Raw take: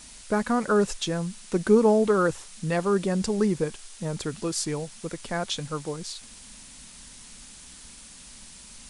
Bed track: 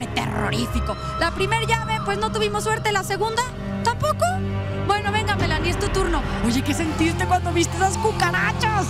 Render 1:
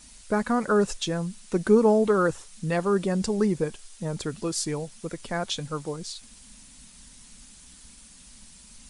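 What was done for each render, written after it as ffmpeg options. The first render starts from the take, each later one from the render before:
ffmpeg -i in.wav -af "afftdn=noise_reduction=6:noise_floor=-47" out.wav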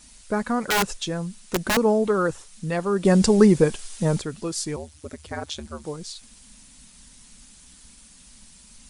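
ffmpeg -i in.wav -filter_complex "[0:a]asettb=1/sr,asplit=3[link_01][link_02][link_03];[link_01]atrim=end=0.674[link_04];[link_02]atrim=start=0.67:end=1.77,asetpts=PTS-STARTPTS,afade=type=in:duration=0.004:curve=qsin,afade=type=out:start_time=1.096:duration=0.004:curve=qsin,aeval=exprs='(mod(5.96*val(0)+1,2)-1)/5.96':channel_layout=same[link_05];[link_03]atrim=start=1.766[link_06];[link_04][link_05]acrossfade=duration=0.004:curve1=hsin:curve2=qsin[link_07];[link_07][link_06]acrossfade=duration=0.004:curve1=qsin:curve2=hsin,asettb=1/sr,asplit=3[link_08][link_09][link_10];[link_08]atrim=end=4.764[link_11];[link_09]atrim=start=4.76:end=5.84,asetpts=PTS-STARTPTS,afade=type=in:duration=0.004:curve=qsin,afade=type=out:start_time=1.076:duration=0.004:curve=qsin,aeval=exprs='val(0)*sin(2*PI*76*n/s)':channel_layout=same[link_12];[link_10]atrim=start=5.836[link_13];[link_11][link_12]acrossfade=duration=0.004:curve1=hsin:curve2=qsin[link_14];[link_14][link_13]acrossfade=duration=0.004:curve1=qsin:curve2=hsin,asplit=3[link_15][link_16][link_17];[link_15]atrim=end=3.052[link_18];[link_16]atrim=start=3.048:end=4.202,asetpts=PTS-STARTPTS,volume=9dB[link_19];[link_17]atrim=start=4.198[link_20];[link_18][link_19]acrossfade=duration=0.004:curve1=hsin:curve2=hsin[link_21];[link_21][link_20]acrossfade=duration=0.004:curve1=hsin:curve2=hsin" out.wav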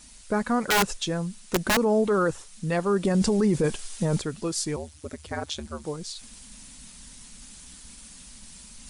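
ffmpeg -i in.wav -af "alimiter=limit=-15dB:level=0:latency=1:release=15,areverse,acompressor=mode=upward:threshold=-39dB:ratio=2.5,areverse" out.wav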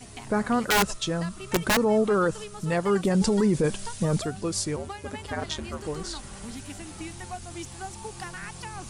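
ffmpeg -i in.wav -i bed.wav -filter_complex "[1:a]volume=-18.5dB[link_01];[0:a][link_01]amix=inputs=2:normalize=0" out.wav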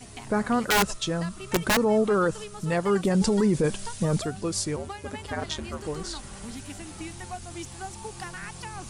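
ffmpeg -i in.wav -af anull out.wav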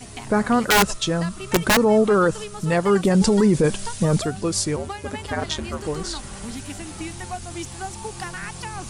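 ffmpeg -i in.wav -af "volume=5.5dB" out.wav

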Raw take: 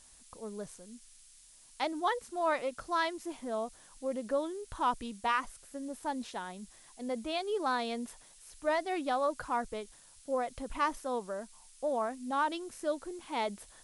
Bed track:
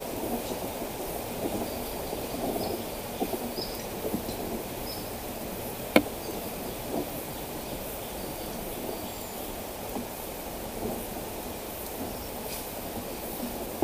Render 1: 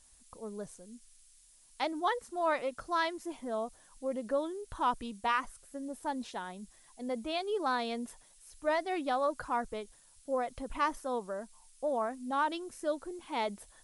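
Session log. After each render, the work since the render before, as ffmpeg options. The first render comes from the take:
ffmpeg -i in.wav -af "afftdn=noise_reduction=6:noise_floor=-58" out.wav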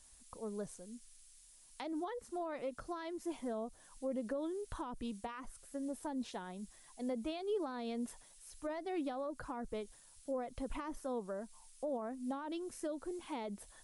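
ffmpeg -i in.wav -filter_complex "[0:a]alimiter=level_in=3dB:limit=-24dB:level=0:latency=1:release=71,volume=-3dB,acrossover=split=480[link_01][link_02];[link_02]acompressor=threshold=-45dB:ratio=6[link_03];[link_01][link_03]amix=inputs=2:normalize=0" out.wav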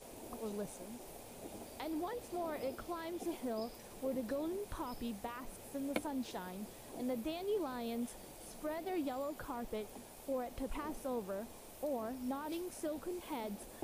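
ffmpeg -i in.wav -i bed.wav -filter_complex "[1:a]volume=-18dB[link_01];[0:a][link_01]amix=inputs=2:normalize=0" out.wav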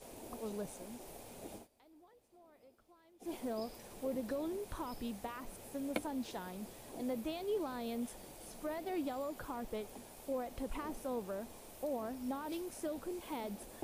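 ffmpeg -i in.wav -filter_complex "[0:a]asplit=3[link_01][link_02][link_03];[link_01]atrim=end=1.68,asetpts=PTS-STARTPTS,afade=type=out:start_time=1.54:duration=0.14:silence=0.0707946[link_04];[link_02]atrim=start=1.68:end=3.19,asetpts=PTS-STARTPTS,volume=-23dB[link_05];[link_03]atrim=start=3.19,asetpts=PTS-STARTPTS,afade=type=in:duration=0.14:silence=0.0707946[link_06];[link_04][link_05][link_06]concat=n=3:v=0:a=1" out.wav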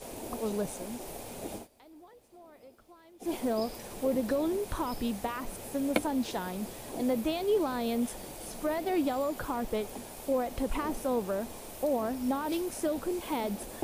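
ffmpeg -i in.wav -af "volume=9.5dB" out.wav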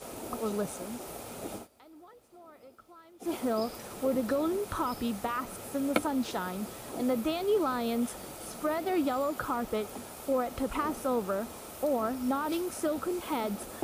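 ffmpeg -i in.wav -af "highpass=53,equalizer=frequency=1300:width_type=o:width=0.22:gain=12" out.wav

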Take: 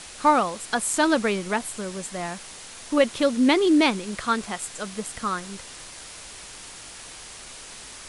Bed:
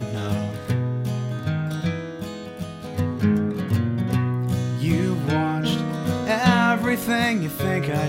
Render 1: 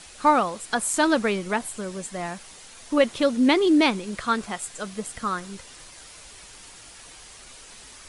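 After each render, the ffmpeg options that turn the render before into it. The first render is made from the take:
ffmpeg -i in.wav -af "afftdn=noise_reduction=6:noise_floor=-42" out.wav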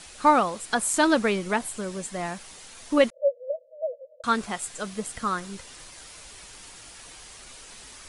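ffmpeg -i in.wav -filter_complex "[0:a]asettb=1/sr,asplit=3[link_01][link_02][link_03];[link_01]atrim=end=3.104[link_04];[link_02]atrim=start=3.1:end=4.24,asetpts=PTS-STARTPTS,afade=type=in:duration=0.004:curve=qsin,afade=type=out:start_time=1.136:duration=0.004:curve=qsin,asuperpass=centerf=560:order=20:qfactor=3.3[link_05];[link_03]atrim=start=4.236[link_06];[link_04][link_05]acrossfade=duration=0.004:curve1=hsin:curve2=qsin[link_07];[link_07][link_06]acrossfade=duration=0.004:curve1=qsin:curve2=hsin" out.wav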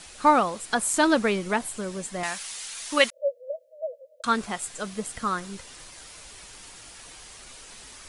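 ffmpeg -i in.wav -filter_complex "[0:a]asettb=1/sr,asplit=3[link_01][link_02][link_03];[link_01]atrim=end=2.234[link_04];[link_02]atrim=start=2.23:end=4.25,asetpts=PTS-STARTPTS,afade=type=in:duration=0.004:curve=qsin,afade=type=out:start_time=2.016:duration=0.004:curve=qsin,tiltshelf=frequency=830:gain=-10[link_05];[link_03]atrim=start=4.246[link_06];[link_04][link_05]acrossfade=duration=0.004:curve1=hsin:curve2=qsin[link_07];[link_07][link_06]acrossfade=duration=0.004:curve1=qsin:curve2=hsin" out.wav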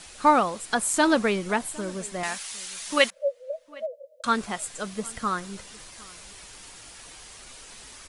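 ffmpeg -i in.wav -filter_complex "[0:a]asplit=2[link_01][link_02];[link_02]adelay=758,volume=-22dB,highshelf=frequency=4000:gain=-17.1[link_03];[link_01][link_03]amix=inputs=2:normalize=0" out.wav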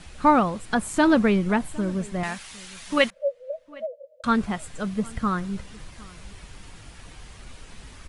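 ffmpeg -i in.wav -af "bass=frequency=250:gain=13,treble=frequency=4000:gain=-9" out.wav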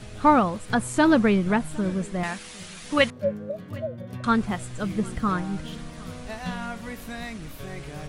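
ffmpeg -i in.wav -i bed.wav -filter_complex "[1:a]volume=-15dB[link_01];[0:a][link_01]amix=inputs=2:normalize=0" out.wav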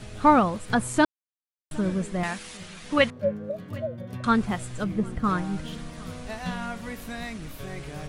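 ffmpeg -i in.wav -filter_complex "[0:a]asettb=1/sr,asplit=3[link_01][link_02][link_03];[link_01]atrim=end=2.574[link_04];[link_02]atrim=start=2.57:end=3.44,asetpts=PTS-STARTPTS,afade=type=in:duration=0.004:curve=qsin,afade=type=out:start_time=0.866:duration=0.004:curve=qsin,highshelf=frequency=5100:gain=-8[link_05];[link_03]atrim=start=3.436[link_06];[link_04][link_05]acrossfade=duration=0.004:curve1=hsin:curve2=qsin[link_07];[link_07][link_06]acrossfade=duration=0.004:curve1=qsin:curve2=hsin,asettb=1/sr,asplit=3[link_08][link_09][link_10];[link_08]atrim=end=4.844[link_11];[link_09]atrim=start=4.84:end=5.24,asetpts=PTS-STARTPTS,afade=type=in:duration=0.004:curve=qsin,afade=type=out:start_time=0.396:duration=0.004:curve=qsin,highshelf=frequency=2200:gain=-10.5[link_12];[link_10]atrim=start=5.236[link_13];[link_11][link_12]acrossfade=duration=0.004:curve1=hsin:curve2=qsin[link_14];[link_14][link_13]acrossfade=duration=0.004:curve1=qsin:curve2=hsin,asplit=3[link_15][link_16][link_17];[link_15]atrim=end=1.05,asetpts=PTS-STARTPTS,afade=type=out:start_time=1.046:duration=0.004:curve=hsin[link_18];[link_16]atrim=start=1.05:end=1.71,asetpts=PTS-STARTPTS,volume=0[link_19];[link_17]atrim=start=1.71,asetpts=PTS-STARTPTS,afade=type=in:duration=0.004:curve=hsin[link_20];[link_18][link_19][link_20]concat=n=3:v=0:a=1" out.wav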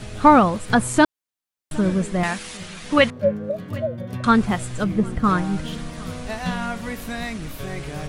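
ffmpeg -i in.wav -af "volume=6dB,alimiter=limit=-3dB:level=0:latency=1" out.wav

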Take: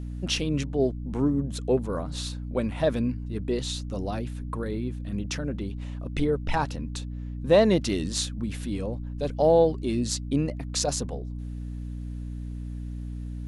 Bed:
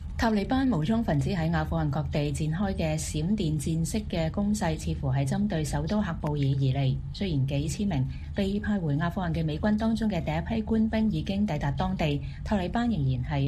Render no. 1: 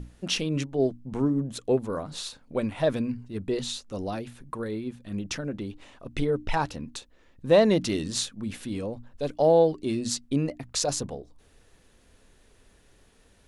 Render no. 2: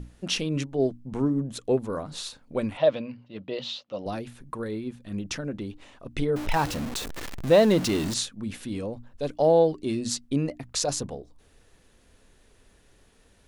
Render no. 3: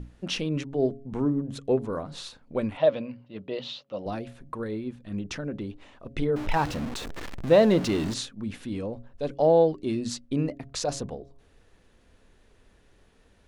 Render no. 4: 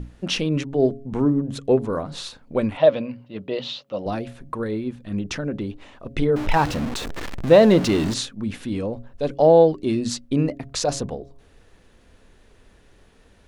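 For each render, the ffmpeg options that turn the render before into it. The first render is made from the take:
ffmpeg -i in.wav -af "bandreject=frequency=60:width_type=h:width=6,bandreject=frequency=120:width_type=h:width=6,bandreject=frequency=180:width_type=h:width=6,bandreject=frequency=240:width_type=h:width=6,bandreject=frequency=300:width_type=h:width=6" out.wav
ffmpeg -i in.wav -filter_complex "[0:a]asettb=1/sr,asplit=3[link_01][link_02][link_03];[link_01]atrim=end=2.774[link_04];[link_02]atrim=start=2.77:end=4.06,asetpts=PTS-STARTPTS,afade=type=in:duration=0.004:curve=qsin,afade=type=out:start_time=1.286:duration=0.004:curve=qsin,highpass=200,equalizer=frequency=250:width_type=q:width=4:gain=-6,equalizer=frequency=390:width_type=q:width=4:gain=-10,equalizer=frequency=570:width_type=q:width=4:gain=8,equalizer=frequency=1600:width_type=q:width=4:gain=-5,equalizer=frequency=3000:width_type=q:width=4:gain=6,lowpass=frequency=4600:width=0.5412,lowpass=frequency=4600:width=1.3066[link_05];[link_03]atrim=start=4.056[link_06];[link_04][link_05]acrossfade=duration=0.004:curve1=hsin:curve2=qsin[link_07];[link_07][link_06]acrossfade=duration=0.004:curve1=qsin:curve2=hsin,asettb=1/sr,asplit=3[link_08][link_09][link_10];[link_08]atrim=end=6.364[link_11];[link_09]atrim=start=6.36:end=8.14,asetpts=PTS-STARTPTS,afade=type=in:duration=0.004:curve=qsin,afade=type=out:start_time=1.776:duration=0.004:curve=qsin,aeval=exprs='val(0)+0.5*0.0355*sgn(val(0))':channel_layout=same[link_12];[link_10]atrim=start=8.136[link_13];[link_11][link_12]acrossfade=duration=0.004:curve1=hsin:curve2=qsin[link_14];[link_14][link_13]acrossfade=duration=0.004:curve1=qsin:curve2=hsin" out.wav
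ffmpeg -i in.wav -af "lowpass=frequency=3400:poles=1,bandreject=frequency=137.6:width_type=h:width=4,bandreject=frequency=275.2:width_type=h:width=4,bandreject=frequency=412.8:width_type=h:width=4,bandreject=frequency=550.4:width_type=h:width=4,bandreject=frequency=688:width_type=h:width=4" out.wav
ffmpeg -i in.wav -af "volume=6dB,alimiter=limit=-3dB:level=0:latency=1" out.wav

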